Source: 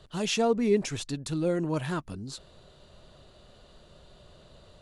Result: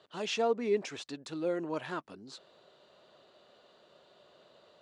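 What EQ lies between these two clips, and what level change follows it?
band-pass 350–7000 Hz; treble shelf 5.4 kHz -8.5 dB; -2.5 dB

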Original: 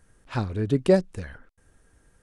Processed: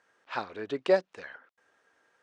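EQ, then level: band-pass 630–7300 Hz; distance through air 110 m; +2.0 dB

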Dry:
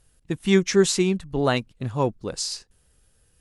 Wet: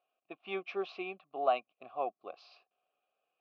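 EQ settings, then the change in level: vowel filter a; distance through air 270 m; cabinet simulation 430–5000 Hz, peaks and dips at 490 Hz -6 dB, 920 Hz -8 dB, 1.6 kHz -7 dB; +6.5 dB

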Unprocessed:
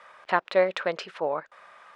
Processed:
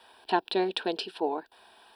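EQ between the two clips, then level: treble shelf 4.3 kHz +8 dB; static phaser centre 560 Hz, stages 6; static phaser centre 2.9 kHz, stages 4; +8.0 dB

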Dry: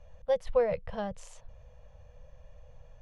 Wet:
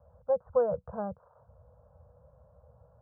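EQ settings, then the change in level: high-pass 69 Hz 24 dB/octave; steep low-pass 1.5 kHz 96 dB/octave; 0.0 dB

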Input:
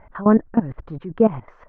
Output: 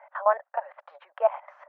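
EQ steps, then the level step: rippled Chebyshev high-pass 560 Hz, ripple 3 dB; treble shelf 2 kHz -8.5 dB; +4.5 dB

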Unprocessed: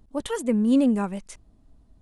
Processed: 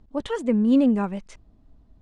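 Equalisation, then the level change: distance through air 110 m; +1.5 dB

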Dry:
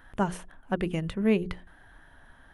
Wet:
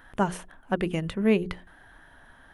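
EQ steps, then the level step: bass shelf 140 Hz -5.5 dB; +3.0 dB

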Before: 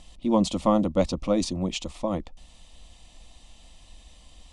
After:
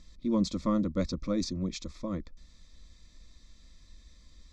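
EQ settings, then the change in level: static phaser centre 2.9 kHz, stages 6; -3.5 dB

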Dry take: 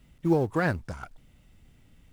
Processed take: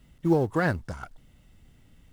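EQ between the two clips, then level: band-stop 2.4 kHz, Q 12; +1.0 dB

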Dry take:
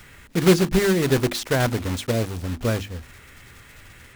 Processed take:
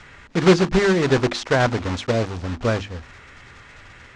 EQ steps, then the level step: low-pass 6.7 kHz 24 dB/octave; peaking EQ 980 Hz +6 dB 2.1 oct; 0.0 dB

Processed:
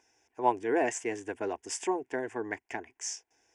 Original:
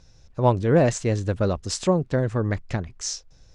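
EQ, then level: high-pass 410 Hz 12 dB/octave; static phaser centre 830 Hz, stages 8; -1.0 dB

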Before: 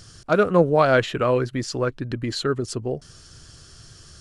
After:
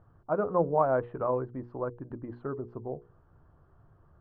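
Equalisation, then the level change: four-pole ladder low-pass 1.1 kHz, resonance 50%; hum notches 60/120/180/240/300/360/420/480 Hz; -1.5 dB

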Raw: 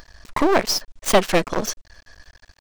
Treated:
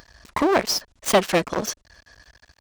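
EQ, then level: high-pass 53 Hz 12 dB/octave; -1.5 dB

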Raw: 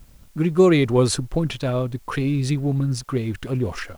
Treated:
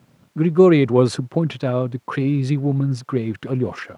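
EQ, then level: high-pass 120 Hz 24 dB/octave; low-pass 1.9 kHz 6 dB/octave; +3.0 dB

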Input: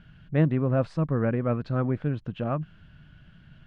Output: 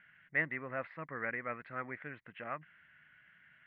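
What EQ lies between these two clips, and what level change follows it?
band-pass filter 2 kHz, Q 8; distance through air 450 m; +15.5 dB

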